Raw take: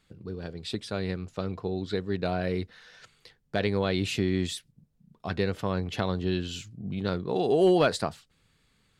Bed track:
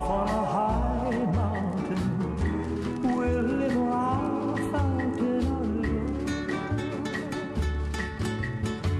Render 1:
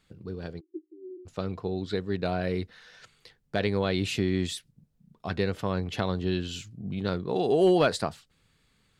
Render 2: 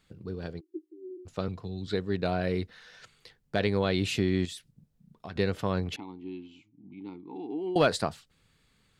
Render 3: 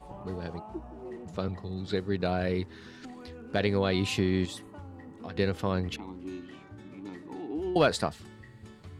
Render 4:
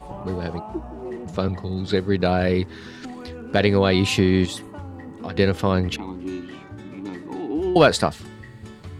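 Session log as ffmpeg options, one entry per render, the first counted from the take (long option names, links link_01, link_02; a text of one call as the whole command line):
ffmpeg -i in.wav -filter_complex "[0:a]asplit=3[link_01][link_02][link_03];[link_01]afade=type=out:start_time=0.59:duration=0.02[link_04];[link_02]asuperpass=centerf=340:order=8:qfactor=4.9,afade=type=in:start_time=0.59:duration=0.02,afade=type=out:start_time=1.25:duration=0.02[link_05];[link_03]afade=type=in:start_time=1.25:duration=0.02[link_06];[link_04][link_05][link_06]amix=inputs=3:normalize=0" out.wav
ffmpeg -i in.wav -filter_complex "[0:a]asettb=1/sr,asplit=3[link_01][link_02][link_03];[link_01]atrim=end=1.484[link_04];[link_02]atrim=start=1.48:end=1.88,asetpts=PTS-STARTPTS,afade=type=in:duration=0.004:curve=qsin,afade=type=out:start_time=0.396:duration=0.004:curve=qsin,acrossover=split=210|3000[link_05][link_06][link_07];[link_06]acompressor=threshold=-44dB:ratio=6:attack=3.2:release=140:knee=2.83:detection=peak[link_08];[link_05][link_08][link_07]amix=inputs=3:normalize=0[link_09];[link_03]atrim=start=1.876[link_10];[link_04][link_09]acrossfade=duration=0.004:curve1=hsin:curve2=qsin[link_11];[link_11][link_10]acrossfade=duration=0.004:curve1=qsin:curve2=hsin,asettb=1/sr,asplit=3[link_12][link_13][link_14];[link_12]atrim=end=4.454[link_15];[link_13]atrim=start=4.45:end=5.36,asetpts=PTS-STARTPTS,afade=type=in:duration=0.004:curve=qsin,afade=type=out:start_time=0.906:duration=0.004:curve=qsin,acompressor=threshold=-40dB:ratio=2.5:attack=3.2:release=140:knee=1:detection=peak[link_16];[link_14]atrim=start=5.356[link_17];[link_15][link_16]acrossfade=duration=0.004:curve1=hsin:curve2=qsin[link_18];[link_18][link_17]acrossfade=duration=0.004:curve1=qsin:curve2=hsin,asettb=1/sr,asplit=3[link_19][link_20][link_21];[link_19]atrim=end=5.964[link_22];[link_20]atrim=start=5.96:end=7.76,asetpts=PTS-STARTPTS,afade=type=in:duration=0.004:curve=qsin,afade=type=out:start_time=1.796:duration=0.004:curve=qsin,asplit=3[link_23][link_24][link_25];[link_23]bandpass=frequency=300:width_type=q:width=8,volume=0dB[link_26];[link_24]bandpass=frequency=870:width_type=q:width=8,volume=-6dB[link_27];[link_25]bandpass=frequency=2240:width_type=q:width=8,volume=-9dB[link_28];[link_26][link_27][link_28]amix=inputs=3:normalize=0[link_29];[link_21]atrim=start=7.756[link_30];[link_22][link_29]acrossfade=duration=0.004:curve1=hsin:curve2=qsin[link_31];[link_31][link_30]acrossfade=duration=0.004:curve1=qsin:curve2=hsin" out.wav
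ffmpeg -i in.wav -i bed.wav -filter_complex "[1:a]volume=-19.5dB[link_01];[0:a][link_01]amix=inputs=2:normalize=0" out.wav
ffmpeg -i in.wav -af "volume=9dB" out.wav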